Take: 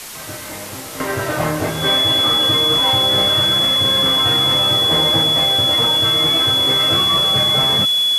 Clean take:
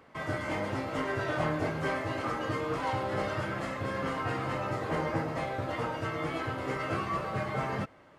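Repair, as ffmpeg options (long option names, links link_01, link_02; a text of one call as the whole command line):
ffmpeg -i in.wav -af "bandreject=frequency=3400:width=30,afwtdn=0.028,asetnsamples=nb_out_samples=441:pad=0,asendcmd='1 volume volume -10.5dB',volume=0dB" out.wav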